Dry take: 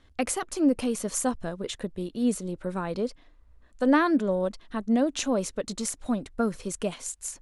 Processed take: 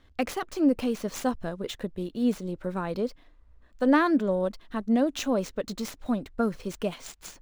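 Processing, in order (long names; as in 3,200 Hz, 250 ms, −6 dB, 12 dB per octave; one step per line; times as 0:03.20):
running median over 5 samples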